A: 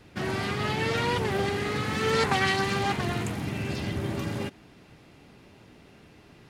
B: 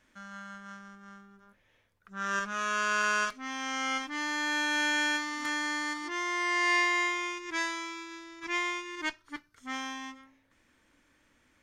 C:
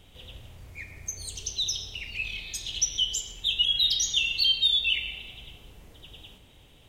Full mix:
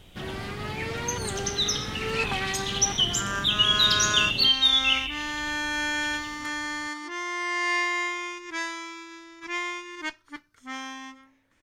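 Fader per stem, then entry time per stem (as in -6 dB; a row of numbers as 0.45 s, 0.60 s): -5.5 dB, +0.5 dB, +2.5 dB; 0.00 s, 1.00 s, 0.00 s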